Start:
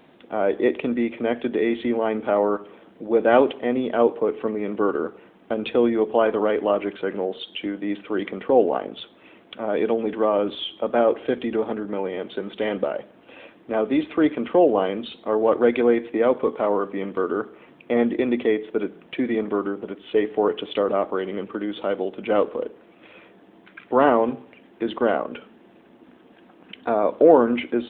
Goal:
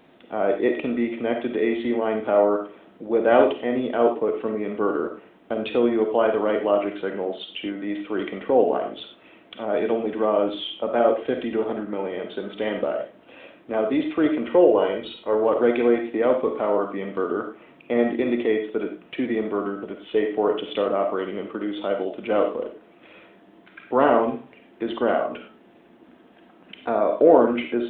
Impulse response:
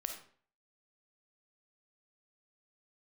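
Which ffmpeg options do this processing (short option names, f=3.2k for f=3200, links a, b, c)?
-filter_complex "[0:a]asettb=1/sr,asplit=3[a][b][c];[a]atrim=end=14.474[d];[b]atrim=start=14.47:end=15.35,asetpts=PTS-STARTPTS,afade=t=in:d=0.004:c=qsin,afade=t=out:st=0.876:d=0.004:c=qsin,aecho=1:1:2.1:0.48,atrim=end_sample=38808[e];[c]atrim=start=15.346[f];[d][e]acrossfade=d=0.004:c1=hsin:c2=qsin[g];[g][f]acrossfade=d=0.004:c1=qsin:c2=hsin[h];[1:a]atrim=start_sample=2205,afade=t=out:st=0.17:d=0.01,atrim=end_sample=7938[i];[h][i]afir=irnorm=-1:irlink=0"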